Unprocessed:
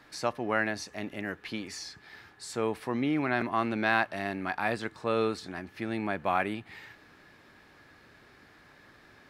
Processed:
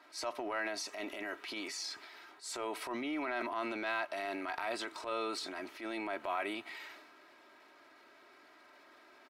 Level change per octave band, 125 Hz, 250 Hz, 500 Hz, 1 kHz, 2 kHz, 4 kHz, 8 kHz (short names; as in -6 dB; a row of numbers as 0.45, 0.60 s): -24.5, -9.5, -7.5, -7.0, -7.5, -1.0, -0.5 dB